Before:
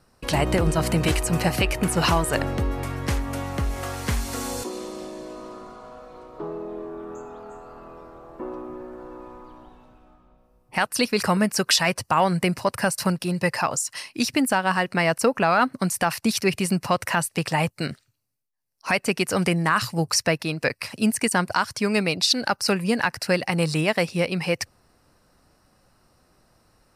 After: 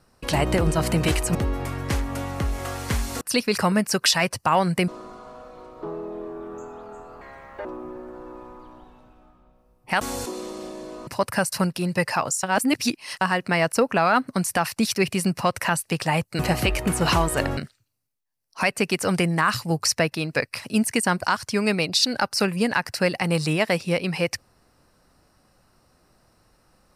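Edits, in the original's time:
0:01.35–0:02.53: move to 0:17.85
0:04.39–0:05.45: swap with 0:10.86–0:12.53
0:07.78–0:08.50: play speed 163%
0:13.89–0:14.67: reverse

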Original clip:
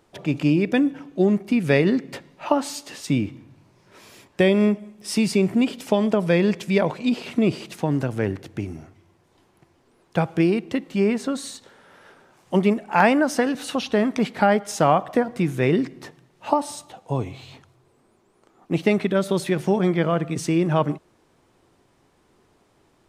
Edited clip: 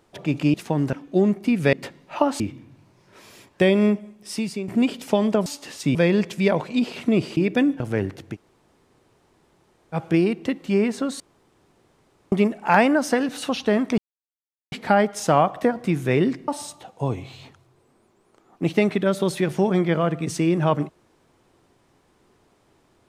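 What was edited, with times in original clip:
0:00.54–0:00.97: swap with 0:07.67–0:08.06
0:01.77–0:02.03: remove
0:02.70–0:03.19: move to 0:06.25
0:04.75–0:05.47: fade out, to −13 dB
0:08.60–0:10.21: fill with room tone, crossfade 0.06 s
0:11.46–0:12.58: fill with room tone
0:14.24: splice in silence 0.74 s
0:16.00–0:16.57: remove

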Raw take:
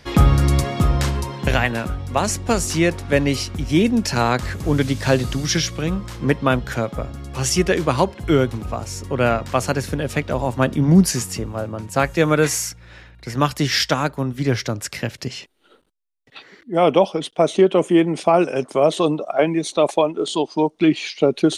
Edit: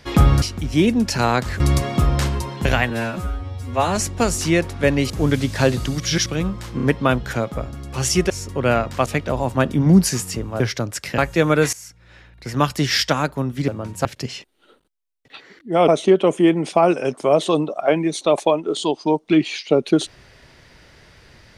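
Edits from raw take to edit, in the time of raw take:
0:01.72–0:02.25: time-stretch 2×
0:03.39–0:04.57: move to 0:00.42
0:05.47–0:05.73: reverse
0:06.23: stutter 0.03 s, 3 plays
0:07.71–0:08.85: remove
0:09.61–0:10.08: remove
0:11.62–0:11.99: swap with 0:14.49–0:15.07
0:12.54–0:13.30: fade in, from −19.5 dB
0:16.90–0:17.39: remove

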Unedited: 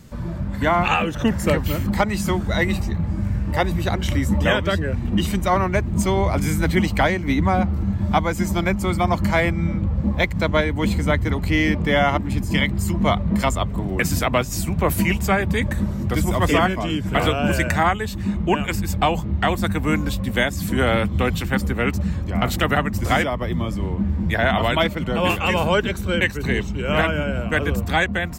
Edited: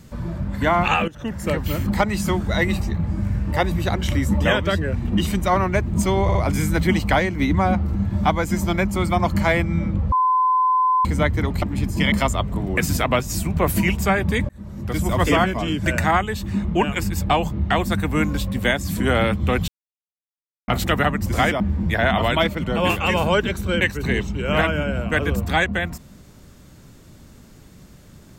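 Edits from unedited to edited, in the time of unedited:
0:01.08–0:01.81: fade in, from −16.5 dB
0:06.23: stutter 0.06 s, 3 plays
0:10.00–0:10.93: beep over 1,020 Hz −14.5 dBFS
0:11.50–0:12.16: remove
0:12.66–0:13.34: remove
0:15.71–0:16.36: fade in
0:17.08–0:17.58: remove
0:21.40–0:22.40: silence
0:23.32–0:24.00: remove

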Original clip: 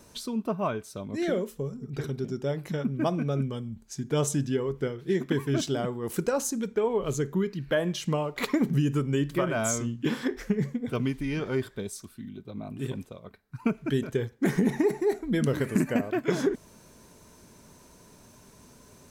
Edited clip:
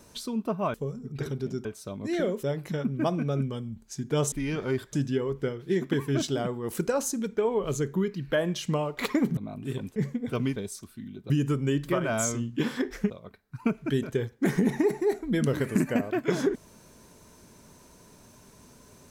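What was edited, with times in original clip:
0:00.74–0:01.52: move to 0:02.43
0:08.76–0:10.56: swap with 0:12.51–0:13.10
0:11.16–0:11.77: move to 0:04.32

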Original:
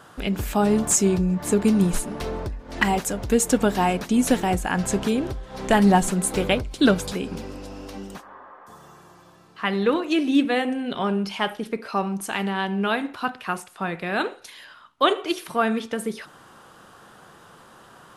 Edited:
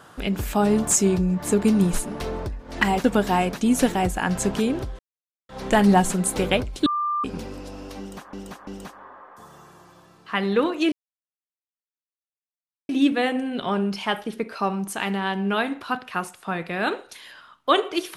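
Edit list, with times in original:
0:03.04–0:03.52: remove
0:05.47: splice in silence 0.50 s
0:06.84–0:07.22: beep over 1,190 Hz −21.5 dBFS
0:07.97–0:08.31: repeat, 3 plays
0:10.22: splice in silence 1.97 s

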